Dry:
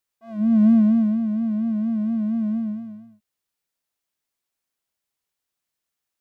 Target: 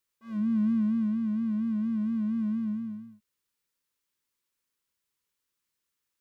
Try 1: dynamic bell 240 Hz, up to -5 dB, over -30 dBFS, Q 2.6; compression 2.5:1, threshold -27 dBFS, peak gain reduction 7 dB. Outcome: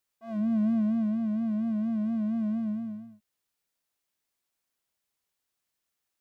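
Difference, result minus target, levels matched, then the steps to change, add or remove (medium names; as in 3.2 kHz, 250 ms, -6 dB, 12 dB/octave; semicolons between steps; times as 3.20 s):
500 Hz band +14.0 dB
add after compression: Butterworth band-stop 700 Hz, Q 2.6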